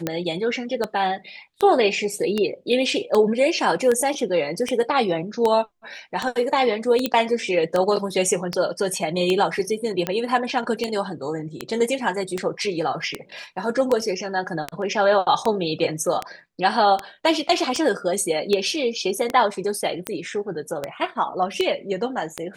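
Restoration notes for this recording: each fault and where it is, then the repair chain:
scratch tick 78 rpm −9 dBFS
0:07.06: click −7 dBFS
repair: click removal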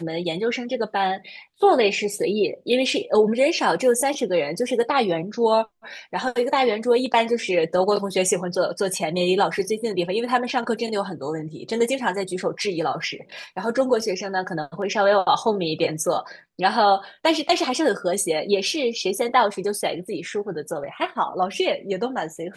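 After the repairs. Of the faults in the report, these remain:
none of them is left

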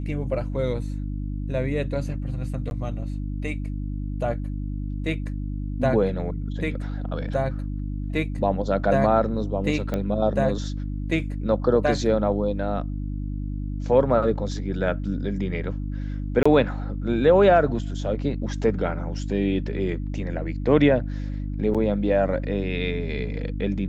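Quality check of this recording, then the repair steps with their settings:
mains hum 50 Hz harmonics 6 −29 dBFS
0:02.70–0:02.71: drop-out 11 ms
0:09.94: click −14 dBFS
0:16.43–0:16.45: drop-out 25 ms
0:21.74–0:21.75: drop-out 7 ms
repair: click removal
hum removal 50 Hz, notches 6
repair the gap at 0:02.70, 11 ms
repair the gap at 0:16.43, 25 ms
repair the gap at 0:21.74, 7 ms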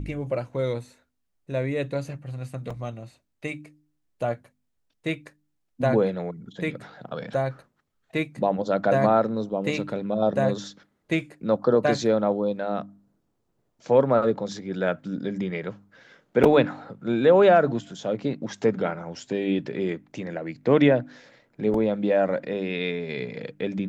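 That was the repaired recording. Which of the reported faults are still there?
none of them is left

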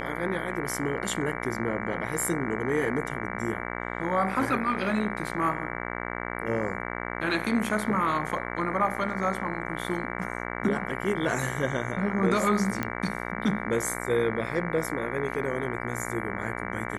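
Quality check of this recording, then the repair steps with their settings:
mains buzz 60 Hz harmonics 38 −34 dBFS
0:12.83: click −14 dBFS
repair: click removal
hum removal 60 Hz, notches 38

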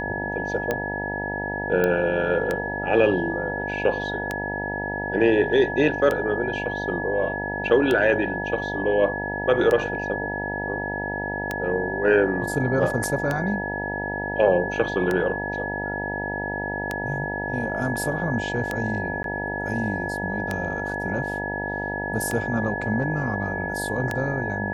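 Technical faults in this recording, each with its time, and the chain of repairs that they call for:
mains buzz 50 Hz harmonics 19 −31 dBFS
scratch tick 33 1/3 rpm −11 dBFS
whistle 1,700 Hz −29 dBFS
0:01.84: click −10 dBFS
0:19.23–0:19.24: drop-out 12 ms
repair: click removal
hum removal 50 Hz, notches 19
notch filter 1,700 Hz, Q 30
repair the gap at 0:19.23, 12 ms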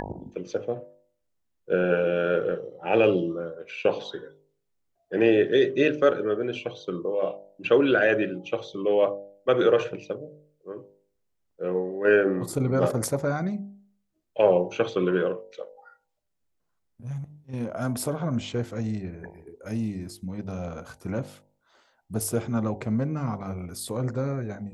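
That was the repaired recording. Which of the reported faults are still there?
none of them is left

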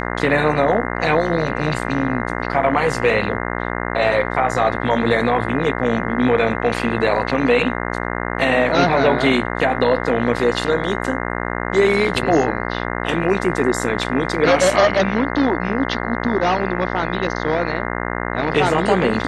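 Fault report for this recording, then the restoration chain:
mains buzz 60 Hz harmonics 35 −24 dBFS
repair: hum removal 60 Hz, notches 35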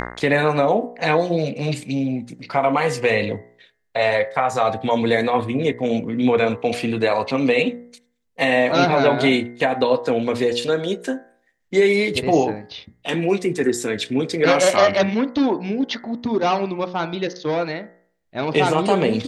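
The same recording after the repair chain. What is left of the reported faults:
none of them is left

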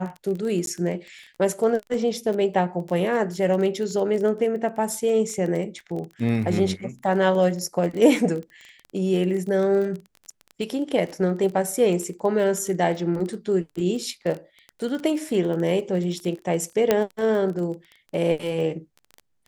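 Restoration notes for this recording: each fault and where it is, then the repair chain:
surface crackle 20 per second −29 dBFS
0:00.66–0:00.67: drop-out 12 ms
0:16.91: click −5 dBFS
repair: click removal
repair the gap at 0:00.66, 12 ms

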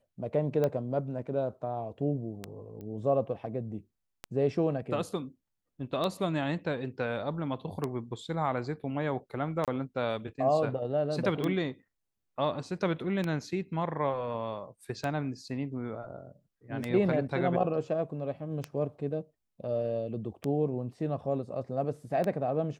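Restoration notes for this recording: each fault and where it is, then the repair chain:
scratch tick 33 1/3 rpm −18 dBFS
0:02.81: click −32 dBFS
0:09.65–0:09.68: drop-out 27 ms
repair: click removal
repair the gap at 0:09.65, 27 ms

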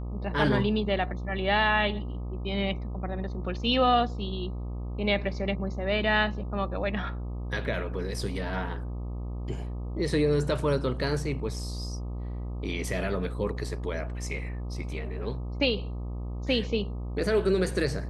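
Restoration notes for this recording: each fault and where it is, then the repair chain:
mains buzz 60 Hz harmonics 21 −34 dBFS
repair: hum removal 60 Hz, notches 21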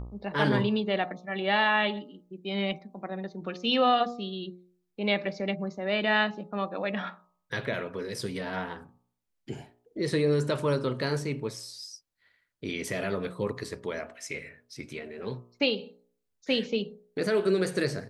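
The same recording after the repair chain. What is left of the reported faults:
none of them is left

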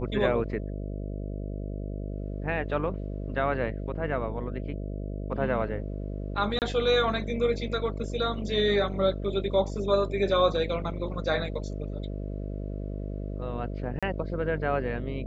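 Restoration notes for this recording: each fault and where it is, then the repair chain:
mains buzz 50 Hz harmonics 13 −34 dBFS
0:06.59–0:06.62: drop-out 28 ms
0:13.99–0:14.03: drop-out 36 ms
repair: hum removal 50 Hz, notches 13
repair the gap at 0:06.59, 28 ms
repair the gap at 0:13.99, 36 ms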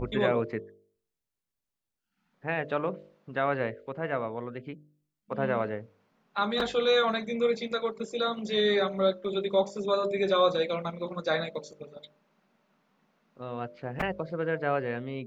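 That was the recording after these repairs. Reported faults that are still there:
none of them is left

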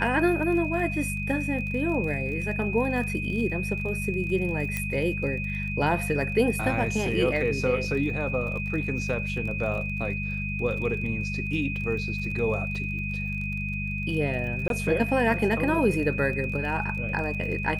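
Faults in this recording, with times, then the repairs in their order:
surface crackle 29 per second −35 dBFS
mains hum 50 Hz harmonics 4 −32 dBFS
whistle 2,500 Hz −32 dBFS
0:04.77: click −14 dBFS
0:14.68–0:14.70: drop-out 22 ms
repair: click removal
notch filter 2,500 Hz, Q 30
hum removal 50 Hz, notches 4
repair the gap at 0:14.68, 22 ms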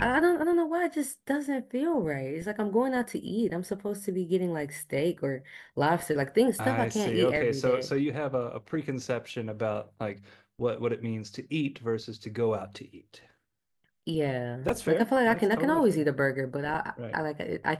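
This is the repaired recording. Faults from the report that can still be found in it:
0:04.77: click

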